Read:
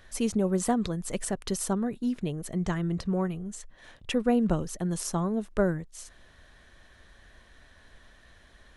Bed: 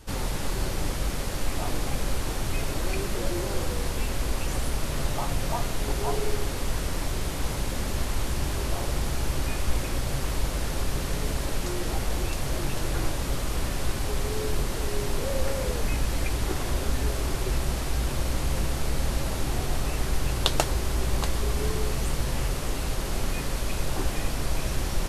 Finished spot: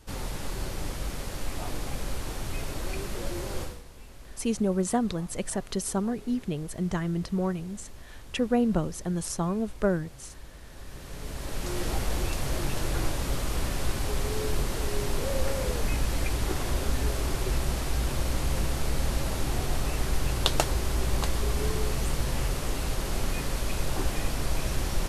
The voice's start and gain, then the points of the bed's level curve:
4.25 s, 0.0 dB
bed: 0:03.62 −5 dB
0:03.84 −19.5 dB
0:10.63 −19.5 dB
0:11.79 −1 dB

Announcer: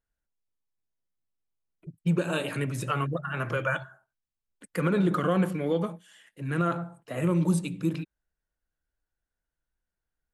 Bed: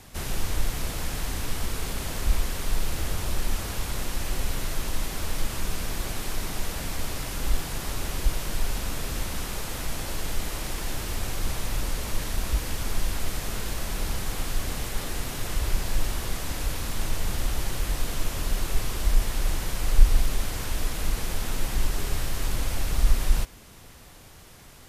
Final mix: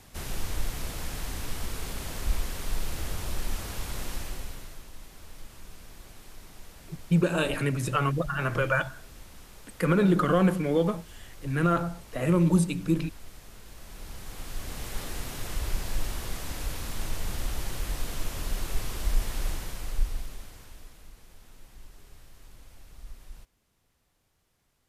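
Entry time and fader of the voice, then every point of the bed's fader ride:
5.05 s, +2.5 dB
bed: 0:04.14 −4.5 dB
0:04.87 −17.5 dB
0:13.63 −17.5 dB
0:14.95 −4.5 dB
0:19.45 −4.5 dB
0:21.14 −24 dB

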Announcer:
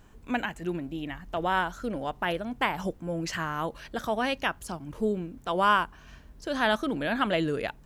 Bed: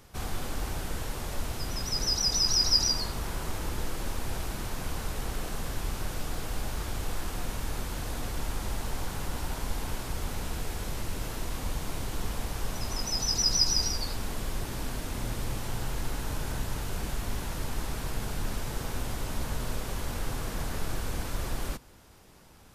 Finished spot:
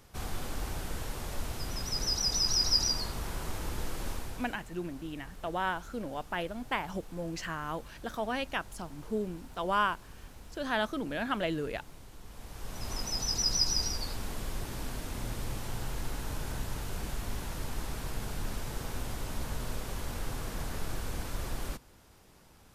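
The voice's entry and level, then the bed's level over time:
4.10 s, −5.5 dB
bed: 0:04.12 −3 dB
0:04.68 −17 dB
0:12.23 −17 dB
0:12.91 −3.5 dB

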